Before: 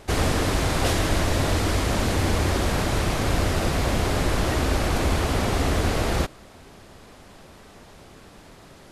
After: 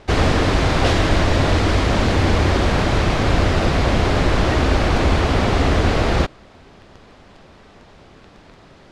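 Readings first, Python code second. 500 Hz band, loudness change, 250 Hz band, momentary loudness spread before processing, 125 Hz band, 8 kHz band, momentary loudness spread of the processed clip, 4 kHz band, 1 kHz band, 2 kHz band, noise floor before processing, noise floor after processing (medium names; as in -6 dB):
+6.0 dB, +6.0 dB, +6.0 dB, 1 LU, +6.0 dB, -2.5 dB, 1 LU, +4.5 dB, +6.0 dB, +6.0 dB, -48 dBFS, -47 dBFS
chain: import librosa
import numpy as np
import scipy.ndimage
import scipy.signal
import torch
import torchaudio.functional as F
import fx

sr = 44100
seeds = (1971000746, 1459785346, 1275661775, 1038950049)

p1 = fx.quant_dither(x, sr, seeds[0], bits=6, dither='none')
p2 = x + (p1 * librosa.db_to_amplitude(-3.0))
p3 = scipy.signal.sosfilt(scipy.signal.butter(2, 4700.0, 'lowpass', fs=sr, output='sos'), p2)
y = p3 * librosa.db_to_amplitude(1.5)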